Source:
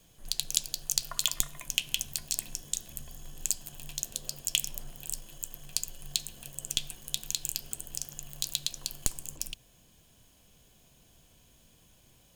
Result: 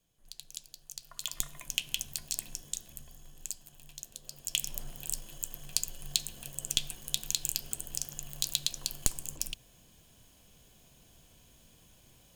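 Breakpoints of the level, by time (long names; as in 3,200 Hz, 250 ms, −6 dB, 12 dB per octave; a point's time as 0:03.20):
0:01.02 −15.5 dB
0:01.46 −3 dB
0:02.56 −3 dB
0:03.66 −10 dB
0:04.22 −10 dB
0:04.77 +1 dB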